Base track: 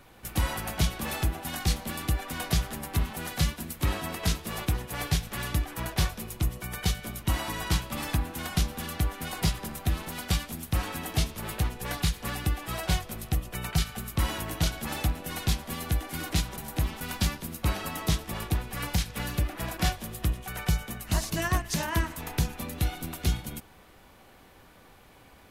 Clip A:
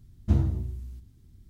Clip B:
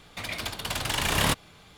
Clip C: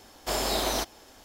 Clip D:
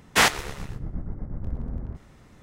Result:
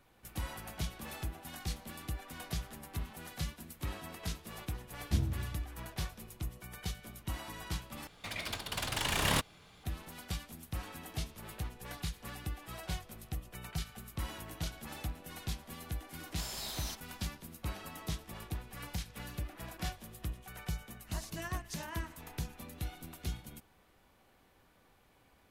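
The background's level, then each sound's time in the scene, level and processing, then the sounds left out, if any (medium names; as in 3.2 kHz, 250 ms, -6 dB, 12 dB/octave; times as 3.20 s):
base track -12 dB
4.83 s: add A -9 dB
8.07 s: replace with B -6 dB
16.11 s: add C -4 dB + amplifier tone stack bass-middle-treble 5-5-5
not used: D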